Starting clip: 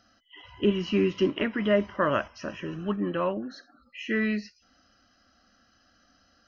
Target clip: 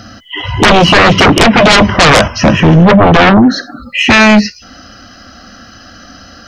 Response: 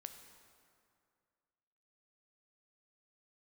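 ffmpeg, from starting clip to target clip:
-af "asetnsamples=nb_out_samples=441:pad=0,asendcmd='4.1 equalizer g 4',equalizer=frequency=120:width_type=o:width=1.9:gain=11.5,aeval=exprs='0.447*sin(PI/2*8.91*val(0)/0.447)':channel_layout=same,volume=5.5dB"

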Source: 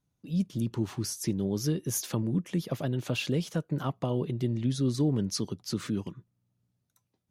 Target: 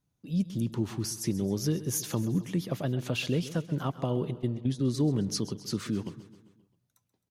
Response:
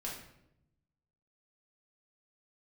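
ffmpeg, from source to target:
-filter_complex "[0:a]asplit=3[link_01][link_02][link_03];[link_01]afade=type=out:start_time=4.33:duration=0.02[link_04];[link_02]agate=range=-24dB:threshold=-28dB:ratio=16:detection=peak,afade=type=in:start_time=4.33:duration=0.02,afade=type=out:start_time=4.79:duration=0.02[link_05];[link_03]afade=type=in:start_time=4.79:duration=0.02[link_06];[link_04][link_05][link_06]amix=inputs=3:normalize=0,aecho=1:1:132|264|396|528|660:0.168|0.094|0.0526|0.0295|0.0165"

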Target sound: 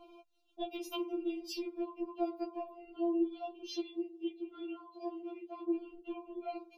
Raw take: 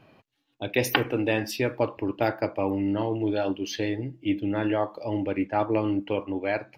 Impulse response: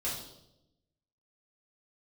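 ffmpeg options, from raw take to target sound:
-filter_complex "[0:a]asuperstop=centerf=1800:order=4:qfactor=1.1,highshelf=frequency=3800:gain=-10,acompressor=threshold=-37dB:ratio=16,asettb=1/sr,asplit=3[link_01][link_02][link_03];[link_01]atrim=end=3.754[link_04];[link_02]atrim=start=3.75:end=5.79,asetpts=PTS-STARTPTS,afade=type=in:duration=0.004:curve=qsin,afade=type=out:start_time=2.036:duration=0.004:curve=qsin,highpass=120,lowpass=6300[link_05];[link_03]atrim=start=5.786[link_06];[link_04][link_05]acrossfade=duration=0.004:curve1=hsin:curve2=qsin[link_07];[link_07][link_06]acrossfade=duration=0.004:curve1=qsin:curve2=hsin,afftfilt=real='re*4*eq(mod(b,16),0)':imag='im*4*eq(mod(b,16),0)':win_size=2048:overlap=0.75,volume=6.5dB"

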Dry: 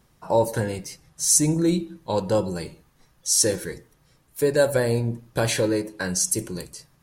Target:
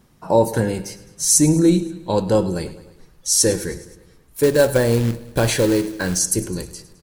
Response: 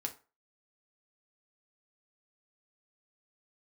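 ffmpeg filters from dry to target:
-filter_complex "[0:a]equalizer=frequency=240:width_type=o:width=1.5:gain=6,aecho=1:1:105|210|315|420|525:0.141|0.0819|0.0475|0.0276|0.016,asettb=1/sr,asplit=3[link_01][link_02][link_03];[link_01]atrim=end=4.434[link_04];[link_02]atrim=start=4.43:end=6.19,asetpts=PTS-STARTPTS,afade=type=in:duration=0.004:curve=qsin,afade=type=out:start_time=1.756:duration=0.004:curve=qsin,acrusher=bits=4:mode=log:mix=0:aa=0.000001[link_05];[link_03]atrim=start=6.186[link_06];[link_04][link_05]acrossfade=duration=0.004:curve1=hsin:curve2=qsin[link_07];[link_07][link_06]acrossfade=duration=0.004:curve1=qsin:curve2=hsin,asubboost=boost=3.5:cutoff=82,volume=3dB"

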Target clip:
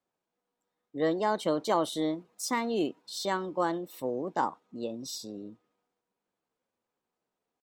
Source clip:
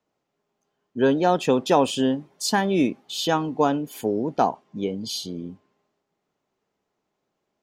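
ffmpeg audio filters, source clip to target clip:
ffmpeg -i in.wav -af "asetrate=52444,aresample=44100,atempo=0.840896,volume=-8.5dB" out.wav

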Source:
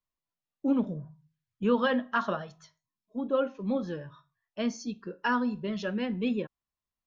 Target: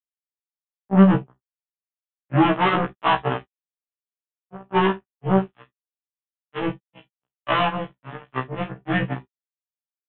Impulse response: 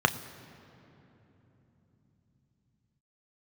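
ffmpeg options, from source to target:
-filter_complex "[0:a]aeval=exprs='0.178*(cos(1*acos(clip(val(0)/0.178,-1,1)))-cos(1*PI/2))+0.0355*(cos(2*acos(clip(val(0)/0.178,-1,1)))-cos(2*PI/2))':channel_layout=same,aresample=11025,acrusher=bits=3:mix=0:aa=0.5,aresample=44100,asetrate=30870,aresample=44100[link_01];[1:a]atrim=start_sample=2205,atrim=end_sample=3087[link_02];[link_01][link_02]afir=irnorm=-1:irlink=0,afftfilt=real='re*1.73*eq(mod(b,3),0)':imag='im*1.73*eq(mod(b,3),0)':win_size=2048:overlap=0.75,volume=-2dB"

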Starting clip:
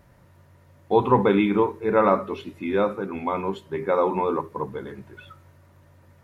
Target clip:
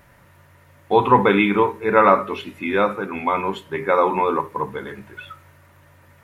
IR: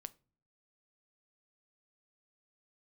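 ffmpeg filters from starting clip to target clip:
-filter_complex "[0:a]tiltshelf=frequency=1500:gain=-9.5,asplit=2[link_01][link_02];[1:a]atrim=start_sample=2205,lowpass=2600[link_03];[link_02][link_03]afir=irnorm=-1:irlink=0,volume=12dB[link_04];[link_01][link_04]amix=inputs=2:normalize=0"

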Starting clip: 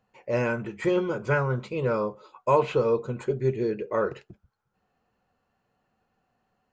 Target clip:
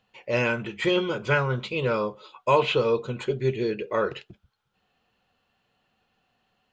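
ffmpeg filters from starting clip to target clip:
ffmpeg -i in.wav -af "equalizer=frequency=3300:width_type=o:width=1.1:gain=14.5" out.wav

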